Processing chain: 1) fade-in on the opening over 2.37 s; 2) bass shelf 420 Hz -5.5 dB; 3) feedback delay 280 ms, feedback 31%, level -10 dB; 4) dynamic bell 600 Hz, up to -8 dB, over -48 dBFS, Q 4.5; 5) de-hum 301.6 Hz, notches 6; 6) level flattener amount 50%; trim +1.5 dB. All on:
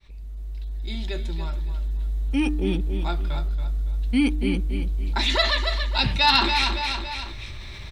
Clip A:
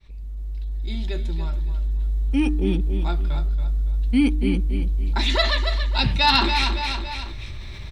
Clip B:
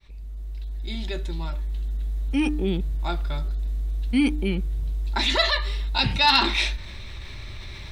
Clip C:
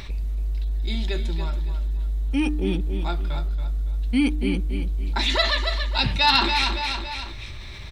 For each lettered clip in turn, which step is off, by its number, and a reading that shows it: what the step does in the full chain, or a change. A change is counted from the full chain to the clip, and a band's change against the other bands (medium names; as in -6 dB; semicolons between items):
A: 2, 125 Hz band +3.0 dB; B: 3, momentary loudness spread change +3 LU; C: 1, momentary loudness spread change -6 LU